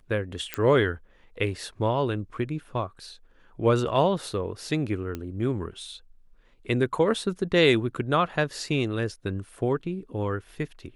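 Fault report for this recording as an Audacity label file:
0.540000	0.540000	pop -12 dBFS
5.150000	5.150000	pop -19 dBFS

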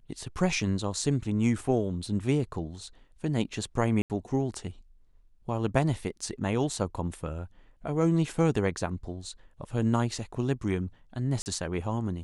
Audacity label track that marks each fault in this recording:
4.020000	4.100000	gap 78 ms
11.420000	11.460000	gap 39 ms

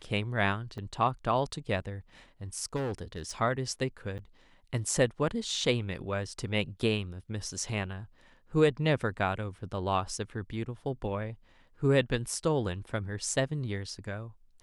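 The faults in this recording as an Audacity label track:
0.780000	0.780000	gap 4.3 ms
2.750000	3.310000	clipped -29.5 dBFS
4.180000	4.190000	gap 9.4 ms

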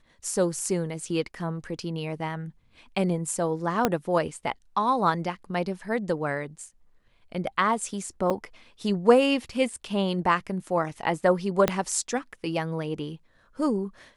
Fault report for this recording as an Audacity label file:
3.850000	3.850000	pop -7 dBFS
8.300000	8.310000	gap 6.1 ms
11.680000	11.680000	pop -7 dBFS

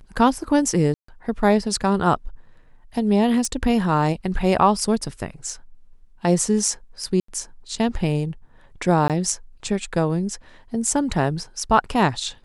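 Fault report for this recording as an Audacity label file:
0.940000	1.080000	gap 0.144 s
3.450000	3.450000	pop -13 dBFS
7.200000	7.280000	gap 84 ms
9.080000	9.100000	gap 17 ms

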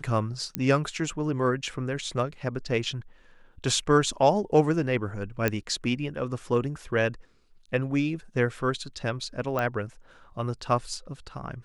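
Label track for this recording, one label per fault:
0.550000	0.550000	pop -11 dBFS
5.480000	5.480000	pop -10 dBFS
9.590000	9.590000	pop -15 dBFS

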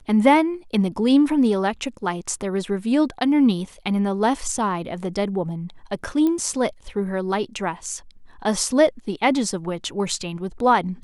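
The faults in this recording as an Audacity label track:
6.270000	6.270000	pop -13 dBFS

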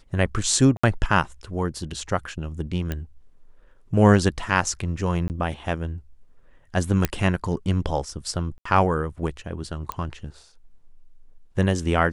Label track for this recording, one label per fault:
0.770000	0.830000	gap 65 ms
2.920000	2.920000	pop -14 dBFS
5.280000	5.300000	gap 19 ms
7.050000	7.050000	pop -6 dBFS
8.580000	8.650000	gap 74 ms
9.920000	9.920000	pop -14 dBFS

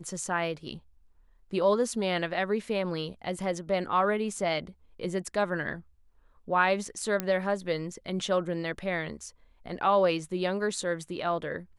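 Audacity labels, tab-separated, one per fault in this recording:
7.200000	7.200000	pop -13 dBFS

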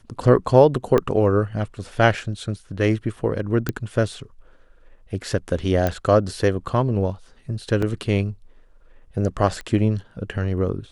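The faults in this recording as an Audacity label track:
0.980000	0.980000	pop -8 dBFS
3.690000	3.690000	pop -9 dBFS
5.870000	5.870000	pop -9 dBFS
7.820000	7.820000	gap 4.4 ms
9.610000	9.610000	pop -21 dBFS

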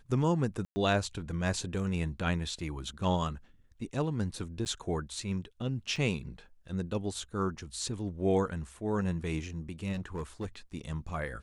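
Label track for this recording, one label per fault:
0.650000	0.760000	gap 0.11 s
4.650000	4.660000	gap 9.7 ms
5.960000	5.960000	gap 3.3 ms
9.920000	10.460000	clipped -31.5 dBFS

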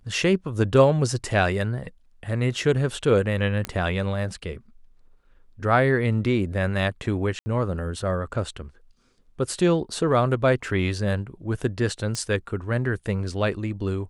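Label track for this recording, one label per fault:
3.650000	3.650000	pop -12 dBFS
7.390000	7.460000	gap 70 ms
12.150000	12.150000	pop -15 dBFS

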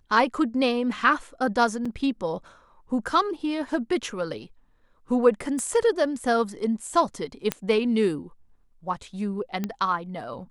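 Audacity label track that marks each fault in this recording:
1.850000	1.850000	gap 4.9 ms
5.590000	5.590000	pop -21 dBFS
7.520000	7.520000	pop -9 dBFS
9.640000	9.640000	pop -15 dBFS

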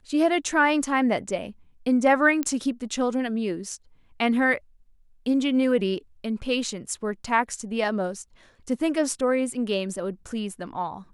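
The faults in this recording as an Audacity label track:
2.430000	2.430000	pop -13 dBFS

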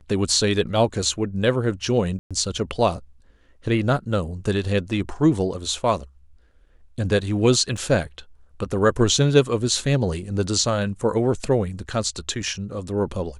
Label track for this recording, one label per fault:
2.190000	2.310000	gap 0.116 s
7.770000	7.770000	gap 4.9 ms

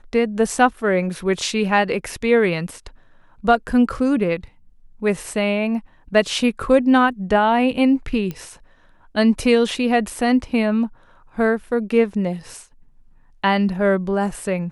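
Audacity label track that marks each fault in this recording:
8.310000	8.310000	pop -16 dBFS

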